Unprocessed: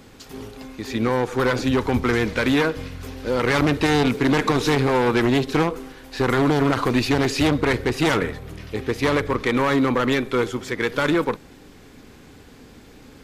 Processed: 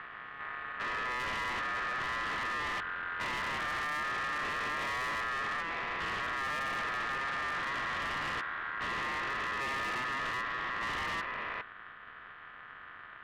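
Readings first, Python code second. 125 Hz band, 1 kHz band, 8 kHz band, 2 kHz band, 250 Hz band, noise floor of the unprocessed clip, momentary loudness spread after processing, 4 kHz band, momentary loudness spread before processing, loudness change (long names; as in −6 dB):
−25.5 dB, −8.0 dB, −14.5 dB, −6.0 dB, −28.0 dB, −47 dBFS, 12 LU, −11.0 dB, 14 LU, −13.0 dB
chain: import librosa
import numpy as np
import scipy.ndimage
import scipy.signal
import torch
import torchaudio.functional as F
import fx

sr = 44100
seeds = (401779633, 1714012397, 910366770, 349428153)

y = fx.spec_steps(x, sr, hold_ms=400)
y = scipy.signal.sosfilt(scipy.signal.butter(4, 1700.0, 'lowpass', fs=sr, output='sos'), y)
y = fx.tube_stage(y, sr, drive_db=37.0, bias=0.8)
y = y * np.sin(2.0 * np.pi * 1500.0 * np.arange(len(y)) / sr)
y = y * librosa.db_to_amplitude(6.0)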